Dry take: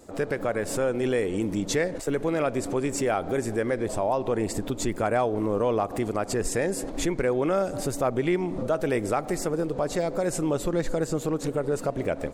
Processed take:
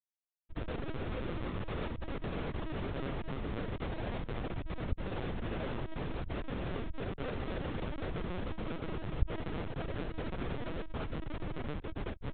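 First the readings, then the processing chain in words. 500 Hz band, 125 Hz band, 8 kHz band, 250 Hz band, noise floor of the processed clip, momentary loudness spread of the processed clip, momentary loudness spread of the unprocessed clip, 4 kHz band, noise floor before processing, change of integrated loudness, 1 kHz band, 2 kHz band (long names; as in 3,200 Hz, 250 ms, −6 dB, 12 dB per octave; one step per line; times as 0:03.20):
−17.0 dB, −6.0 dB, below −40 dB, −12.5 dB, −53 dBFS, 3 LU, 3 LU, −9.0 dB, −37 dBFS, −13.0 dB, −13.5 dB, −11.0 dB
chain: hard clipping −30 dBFS, distortion −6 dB
feedback delay with all-pass diffusion 467 ms, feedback 55%, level −12.5 dB
comparator with hysteresis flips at −29 dBFS
linear-prediction vocoder at 8 kHz pitch kept
level −4 dB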